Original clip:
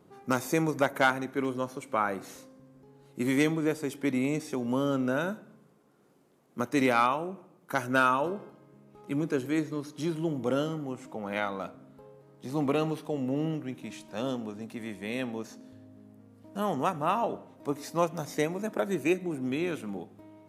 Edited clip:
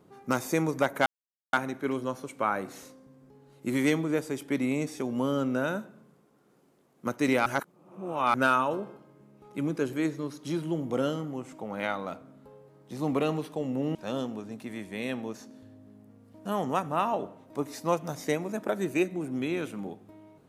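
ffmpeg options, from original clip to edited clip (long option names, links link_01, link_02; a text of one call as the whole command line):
ffmpeg -i in.wav -filter_complex "[0:a]asplit=5[link_01][link_02][link_03][link_04][link_05];[link_01]atrim=end=1.06,asetpts=PTS-STARTPTS,afade=type=out:start_time=1.056:duration=0.004:curve=hsin,apad=pad_dur=0.47[link_06];[link_02]atrim=start=1.06:end=6.992,asetpts=PTS-STARTPTS,afade=type=in:duration=0.004:curve=hsin[link_07];[link_03]atrim=start=6.988:end=7.872,asetpts=PTS-STARTPTS,areverse[link_08];[link_04]atrim=start=7.868:end=13.482[link_09];[link_05]atrim=start=14.048[link_10];[link_06][link_07]concat=n=2:v=0:a=1[link_11];[link_11][link_08]acrossfade=duration=0.004:curve1=hsin:curve2=hsin[link_12];[link_12][link_09]acrossfade=duration=0.004:curve1=hsin:curve2=hsin[link_13];[link_13][link_10]acrossfade=duration=0.004:curve1=hsin:curve2=hsin" out.wav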